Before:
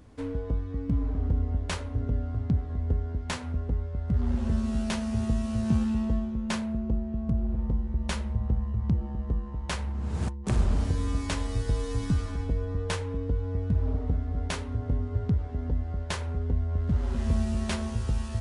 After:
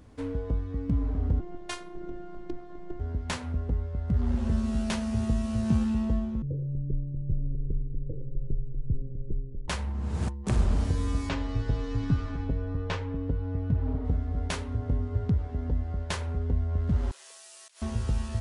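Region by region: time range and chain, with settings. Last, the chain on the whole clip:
1.40–3.00 s: high-pass 120 Hz + robot voice 352 Hz
6.42–9.68 s: frequency shift -81 Hz + Chebyshev low-pass 520 Hz, order 6
11.29–14.05 s: distance through air 160 m + comb 7.4 ms, depth 43%
17.11–17.82 s: steep high-pass 390 Hz + differentiator + compressor with a negative ratio -53 dBFS
whole clip: none

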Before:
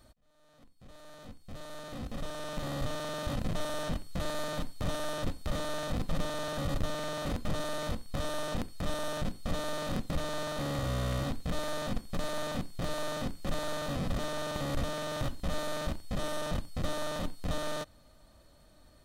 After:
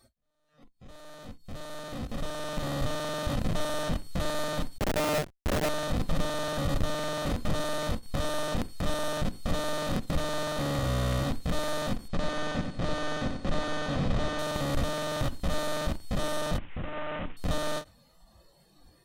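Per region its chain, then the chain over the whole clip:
4.78–5.69 s: low-pass 3.4 kHz 24 dB/octave + peaking EQ 660 Hz +8 dB 1 oct + Schmitt trigger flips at -31.5 dBFS
12.08–14.39 s: distance through air 79 m + feedback delay 91 ms, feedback 34%, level -6.5 dB
16.58–17.37 s: CVSD coder 16 kbps + treble shelf 2.1 kHz +7 dB + compression, threshold -34 dBFS
whole clip: spectral noise reduction 15 dB; endings held to a fixed fall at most 300 dB/s; trim +4 dB

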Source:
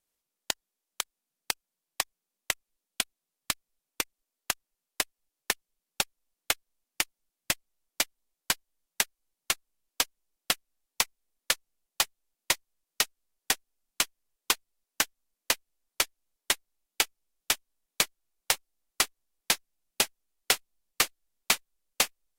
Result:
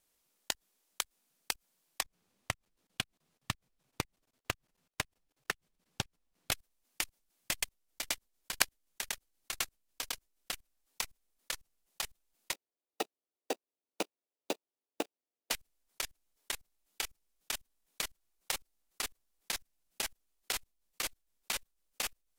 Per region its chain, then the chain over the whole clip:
2.01–6.52 s: low-pass 3.3 kHz 6 dB/octave + compression, threshold -41 dBFS + peaking EQ 110 Hz +14 dB 1.5 oct
7.52–10.52 s: delay 104 ms -3.5 dB + waveshaping leveller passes 1
12.53–15.51 s: median filter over 41 samples + high-pass 290 Hz 24 dB/octave + peaking EQ 1.6 kHz -12 dB 0.5 oct
whole clip: level held to a coarse grid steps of 23 dB; peak limiter -11 dBFS; compressor with a negative ratio -37 dBFS, ratio -1; trim +5.5 dB

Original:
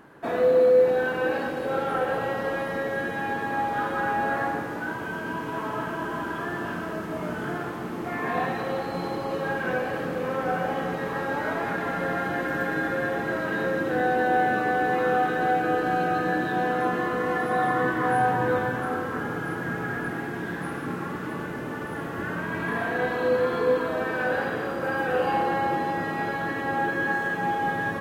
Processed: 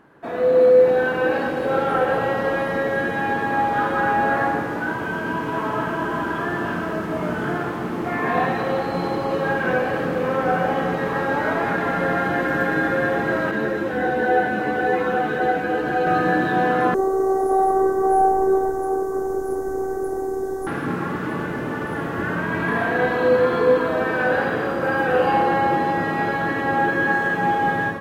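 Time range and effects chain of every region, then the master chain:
13.51–16.07 s: band-stop 1.2 kHz, Q 9.3 + doubling 14 ms -11.5 dB + three-phase chorus
16.94–20.67 s: FFT filter 250 Hz 0 dB, 450 Hz +7 dB, 1 kHz -3 dB, 2.7 kHz -29 dB, 6.3 kHz +7 dB + robot voice 384 Hz
whole clip: treble shelf 5 kHz -6 dB; level rider gain up to 8.5 dB; trim -2 dB

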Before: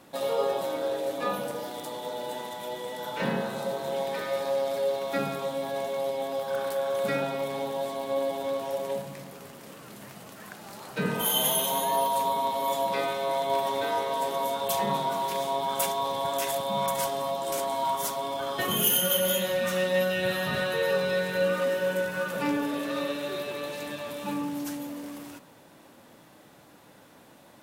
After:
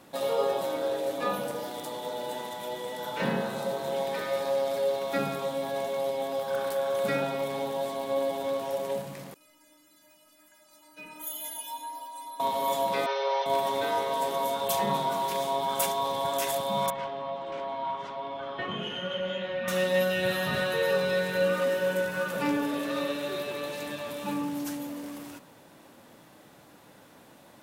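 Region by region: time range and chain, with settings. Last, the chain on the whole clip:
9.34–12.40 s: treble shelf 2.9 kHz +6 dB + inharmonic resonator 300 Hz, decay 0.41 s, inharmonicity 0.008
13.06–13.46 s: one-bit delta coder 64 kbps, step -45 dBFS + brick-wall FIR band-pass 380–6200 Hz + comb 5.1 ms, depth 70%
16.90–19.68 s: four-pole ladder low-pass 3.6 kHz, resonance 20% + delay 376 ms -16 dB
whole clip: none

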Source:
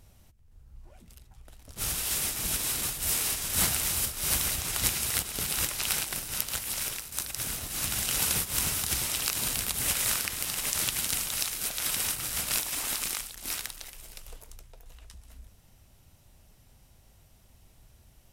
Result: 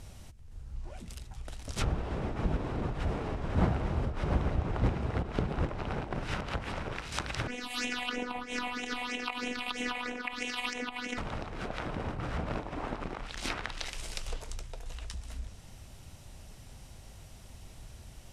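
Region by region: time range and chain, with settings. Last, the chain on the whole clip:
7.47–11.18 s: resonant low shelf 220 Hz -12.5 dB, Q 3 + phase shifter stages 6, 3.1 Hz, lowest notch 380–1300 Hz + robot voice 247 Hz
whole clip: low-pass 10 kHz 12 dB/octave; low-pass that closes with the level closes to 710 Hz, closed at -30 dBFS; trim +9 dB

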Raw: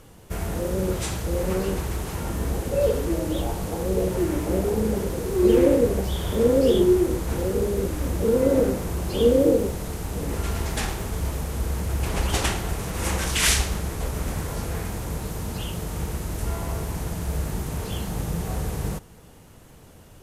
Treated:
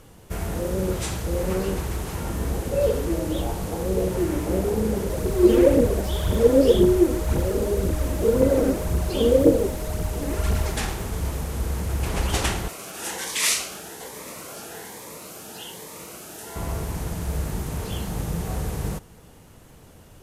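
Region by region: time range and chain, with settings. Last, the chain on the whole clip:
5.09–10.70 s: phaser 1.9 Hz, delay 4 ms, feedback 48% + whistle 620 Hz -36 dBFS
12.68–16.56 s: Bessel high-pass 480 Hz + Shepard-style phaser rising 1.2 Hz
whole clip: none

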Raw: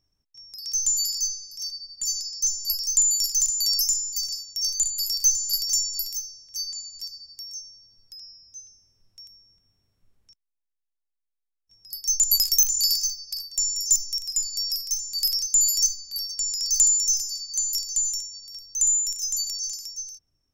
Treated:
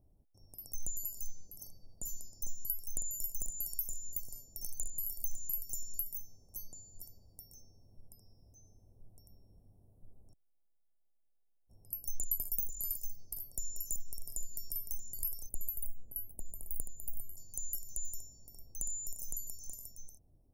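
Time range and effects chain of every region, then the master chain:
15.49–17.37 s: inverse Chebyshev band-stop 1.8–5.4 kHz, stop band 50 dB + peaking EQ 12 kHz -3.5 dB 0.26 oct
whole clip: Chebyshev band-stop 720–9400 Hz, order 3; compression 2.5:1, threshold -39 dBFS; resonant high shelf 3.7 kHz -8 dB, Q 1.5; trim +9.5 dB

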